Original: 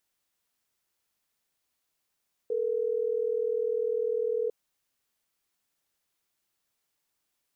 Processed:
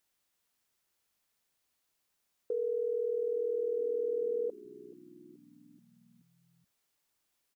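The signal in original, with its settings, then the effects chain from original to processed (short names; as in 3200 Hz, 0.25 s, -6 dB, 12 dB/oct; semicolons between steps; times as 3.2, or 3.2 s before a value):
call progress tone ringback tone, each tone -28.5 dBFS
dynamic EQ 440 Hz, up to -6 dB, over -41 dBFS, Q 7.1; frequency-shifting echo 0.429 s, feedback 60%, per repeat -62 Hz, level -19.5 dB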